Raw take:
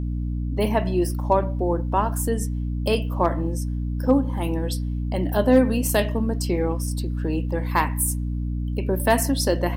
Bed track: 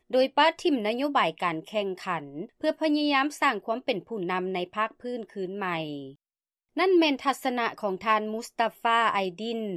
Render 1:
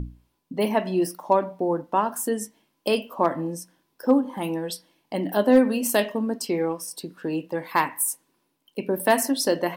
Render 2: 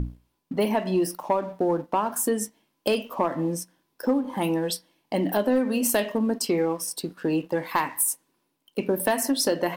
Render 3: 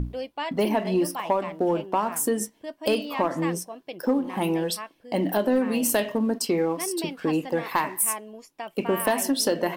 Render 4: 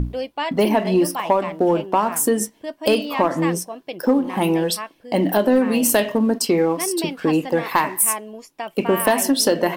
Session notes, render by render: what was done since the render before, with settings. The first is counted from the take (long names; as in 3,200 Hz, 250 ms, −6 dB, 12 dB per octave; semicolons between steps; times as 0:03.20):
mains-hum notches 60/120/180/240/300 Hz
downward compressor 4 to 1, threshold −23 dBFS, peak gain reduction 10 dB; leveller curve on the samples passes 1
mix in bed track −10.5 dB
level +6 dB